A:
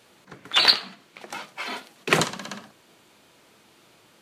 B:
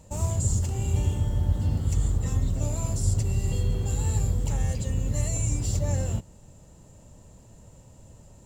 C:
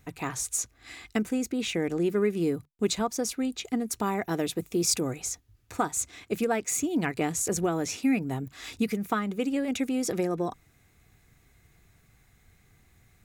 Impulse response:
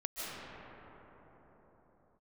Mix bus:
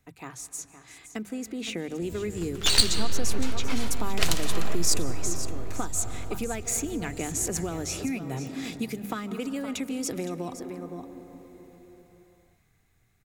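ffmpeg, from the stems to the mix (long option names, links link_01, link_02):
-filter_complex "[0:a]aeval=exprs='max(val(0),0)':channel_layout=same,adelay=2100,volume=1dB,asplit=2[link_01][link_02];[link_02]volume=-9dB[link_03];[1:a]acrusher=bits=7:mix=0:aa=0.5,adelay=1900,volume=-15.5dB[link_04];[2:a]bandreject=frequency=50:width_type=h:width=6,bandreject=frequency=100:width_type=h:width=6,bandreject=frequency=150:width_type=h:width=6,bandreject=frequency=200:width_type=h:width=6,dynaudnorm=framelen=380:gausssize=9:maxgain=10dB,volume=-9dB,asplit=3[link_05][link_06][link_07];[link_06]volume=-16dB[link_08];[link_07]volume=-11.5dB[link_09];[3:a]atrim=start_sample=2205[link_10];[link_03][link_08]amix=inputs=2:normalize=0[link_11];[link_11][link_10]afir=irnorm=-1:irlink=0[link_12];[link_09]aecho=0:1:515:1[link_13];[link_01][link_04][link_05][link_12][link_13]amix=inputs=5:normalize=0,acrossover=split=150|3000[link_14][link_15][link_16];[link_15]acompressor=threshold=-31dB:ratio=4[link_17];[link_14][link_17][link_16]amix=inputs=3:normalize=0"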